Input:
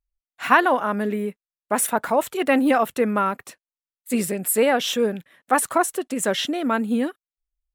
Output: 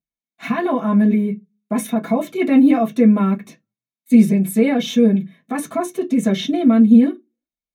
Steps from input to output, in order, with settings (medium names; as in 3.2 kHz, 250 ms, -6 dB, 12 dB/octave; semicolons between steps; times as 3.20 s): peak limiter -11.5 dBFS, peak gain reduction 10 dB; reverberation RT60 0.15 s, pre-delay 3 ms, DRR -5 dB; trim -9 dB